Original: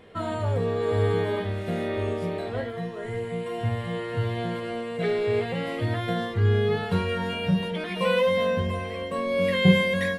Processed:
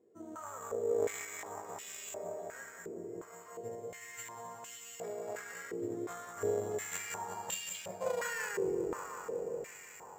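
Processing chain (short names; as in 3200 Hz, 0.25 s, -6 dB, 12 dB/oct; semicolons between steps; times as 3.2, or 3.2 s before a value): tape stop at the end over 2.12 s; added harmonics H 3 -12 dB, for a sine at -11 dBFS; dark delay 0.184 s, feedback 82%, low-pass 2300 Hz, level -5 dB; careless resampling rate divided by 6×, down none, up zero stuff; stepped band-pass 2.8 Hz 360–2900 Hz; gain +3 dB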